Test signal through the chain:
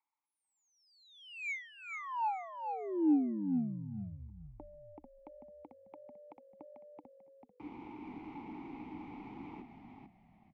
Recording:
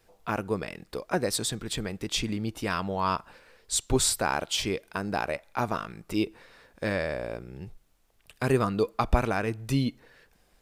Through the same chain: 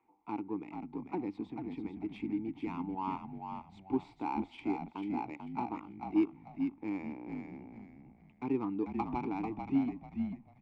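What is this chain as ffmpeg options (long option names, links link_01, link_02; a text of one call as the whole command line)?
ffmpeg -i in.wav -filter_complex "[0:a]acrossover=split=100|920|1900[link_01][link_02][link_03][link_04];[link_03]acompressor=mode=upward:threshold=-55dB:ratio=2.5[link_05];[link_01][link_02][link_05][link_04]amix=inputs=4:normalize=0,asplit=3[link_06][link_07][link_08];[link_06]bandpass=frequency=300:width_type=q:width=8,volume=0dB[link_09];[link_07]bandpass=frequency=870:width_type=q:width=8,volume=-6dB[link_10];[link_08]bandpass=frequency=2240:width_type=q:width=8,volume=-9dB[link_11];[link_09][link_10][link_11]amix=inputs=3:normalize=0,adynamicsmooth=sensitivity=4.5:basefreq=1800,asplit=5[link_12][link_13][link_14][link_15][link_16];[link_13]adelay=442,afreqshift=-47,volume=-5.5dB[link_17];[link_14]adelay=884,afreqshift=-94,volume=-16dB[link_18];[link_15]adelay=1326,afreqshift=-141,volume=-26.4dB[link_19];[link_16]adelay=1768,afreqshift=-188,volume=-36.9dB[link_20];[link_12][link_17][link_18][link_19][link_20]amix=inputs=5:normalize=0,volume=4dB" out.wav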